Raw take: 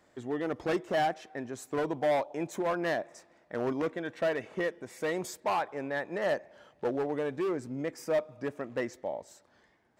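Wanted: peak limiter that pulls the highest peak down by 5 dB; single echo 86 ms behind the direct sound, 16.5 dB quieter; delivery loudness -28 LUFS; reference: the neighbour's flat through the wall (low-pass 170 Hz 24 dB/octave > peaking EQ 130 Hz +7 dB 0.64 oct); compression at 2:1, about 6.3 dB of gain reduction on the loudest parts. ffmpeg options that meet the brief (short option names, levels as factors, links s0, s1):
-af "acompressor=threshold=0.0158:ratio=2,alimiter=level_in=2:limit=0.0631:level=0:latency=1,volume=0.501,lowpass=f=170:w=0.5412,lowpass=f=170:w=1.3066,equalizer=f=130:t=o:w=0.64:g=7,aecho=1:1:86:0.15,volume=14.1"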